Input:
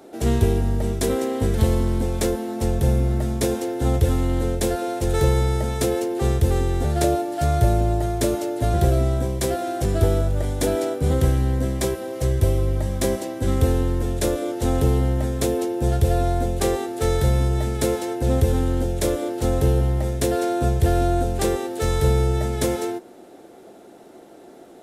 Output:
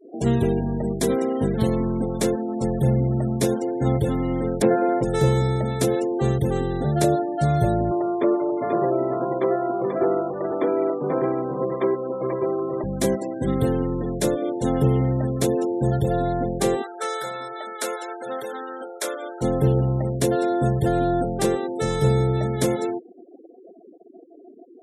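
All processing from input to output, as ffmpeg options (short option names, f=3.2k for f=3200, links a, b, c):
-filter_complex "[0:a]asettb=1/sr,asplit=3[a][b][c];[a]atrim=end=4.624[d];[b]atrim=start=4.62:end=5.03,asetpts=PTS-STARTPTS,afade=t=in:d=0.004:c=qsin,afade=t=out:st=0.406:d=0.004:c=qsin,acontrast=35,highpass=150,lowpass=2.1k[e];[c]atrim=start=5.026[f];[d][e]acrossfade=d=0.004:c1=hsin:c2=qsin[g];[g][f]acrossfade=d=0.004:c1=qsin:c2=hsin,asettb=1/sr,asplit=3[h][i][j];[h]atrim=end=7.914[k];[i]atrim=start=7.91:end=12.84,asetpts=PTS-STARTPTS,afade=t=in:d=0.004:c=qsin,afade=t=out:st=4.926:d=0.004:c=qsin,highpass=350,equalizer=f=360:t=q:w=4:g=7,equalizer=f=1.1k:t=q:w=4:g=10,equalizer=f=1.6k:t=q:w=4:g=-4,equalizer=f=2.7k:t=q:w=4:g=-5,lowpass=f=2.9k:w=0.5412,lowpass=f=2.9k:w=1.3066,aecho=1:1:487:0.596,atrim=end_sample=217413[l];[j]atrim=start=12.836[m];[k][l]acrossfade=d=0.004:c1=hsin:c2=qsin[n];[n][m]acrossfade=d=0.004:c1=qsin:c2=hsin,asettb=1/sr,asplit=3[o][p][q];[o]atrim=end=16.824[r];[p]atrim=start=16.82:end=19.41,asetpts=PTS-STARTPTS,afade=t=in:d=0.004:c=qsin,afade=t=out:st=2.586:d=0.004:c=qsin,highpass=690,equalizer=f=1.4k:w=3.5:g=7.5[s];[q]atrim=start=19.406[t];[r][s]acrossfade=d=0.004:c1=hsin:c2=qsin[u];[u][t]acrossfade=d=0.004:c1=qsin:c2=hsin,afftfilt=real='re*gte(hypot(re,im),0.0251)':imag='im*gte(hypot(re,im),0.0251)':win_size=1024:overlap=0.75,lowshelf=f=110:t=q:w=3:g=-8.5"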